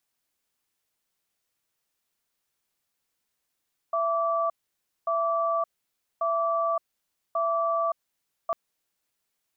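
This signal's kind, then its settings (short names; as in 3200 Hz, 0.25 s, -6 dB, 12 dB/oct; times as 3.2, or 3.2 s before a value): cadence 667 Hz, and 1160 Hz, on 0.57 s, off 0.57 s, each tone -25.5 dBFS 4.60 s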